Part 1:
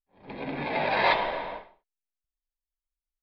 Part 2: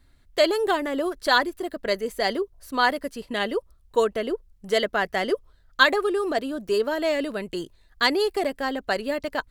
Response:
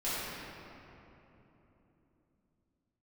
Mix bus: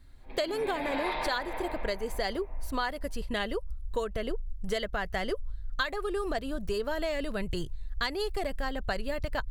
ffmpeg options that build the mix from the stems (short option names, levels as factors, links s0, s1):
-filter_complex "[0:a]highpass=160,dynaudnorm=f=180:g=5:m=4.47,asplit=2[s0][s1];[s1]adelay=6.3,afreqshift=0.96[s2];[s0][s2]amix=inputs=2:normalize=1,volume=0.266,asplit=2[s3][s4];[s4]volume=0.422[s5];[1:a]lowshelf=f=180:g=5,volume=0.944[s6];[2:a]atrim=start_sample=2205[s7];[s5][s7]afir=irnorm=-1:irlink=0[s8];[s3][s6][s8]amix=inputs=3:normalize=0,asubboost=boost=10:cutoff=89,acompressor=threshold=0.0447:ratio=10"